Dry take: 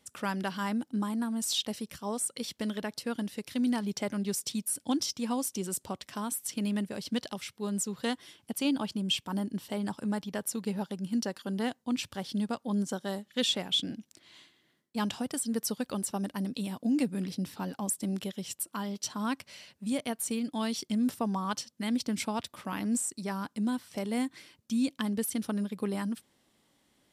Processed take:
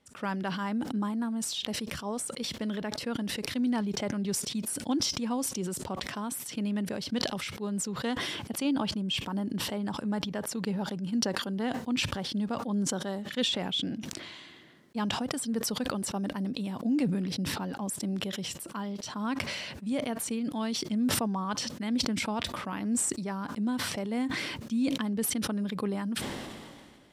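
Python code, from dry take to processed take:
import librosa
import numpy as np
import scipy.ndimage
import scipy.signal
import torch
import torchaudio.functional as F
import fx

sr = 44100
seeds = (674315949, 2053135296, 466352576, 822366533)

y = fx.lowpass(x, sr, hz=2700.0, slope=6)
y = fx.sustainer(y, sr, db_per_s=30.0)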